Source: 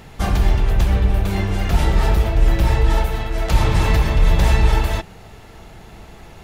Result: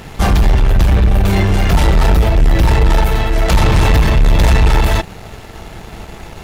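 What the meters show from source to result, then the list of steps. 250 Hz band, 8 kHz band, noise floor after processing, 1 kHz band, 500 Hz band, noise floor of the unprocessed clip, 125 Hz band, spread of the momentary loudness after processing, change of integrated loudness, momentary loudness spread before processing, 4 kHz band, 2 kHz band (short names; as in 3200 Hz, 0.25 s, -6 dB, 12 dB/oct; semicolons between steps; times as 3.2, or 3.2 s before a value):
+7.0 dB, +6.5 dB, -34 dBFS, +6.0 dB, +6.5 dB, -42 dBFS, +5.5 dB, 19 LU, +5.5 dB, 5 LU, +6.5 dB, +6.5 dB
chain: soft clip -5.5 dBFS, distortion -23 dB; sample leveller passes 2; gain +2.5 dB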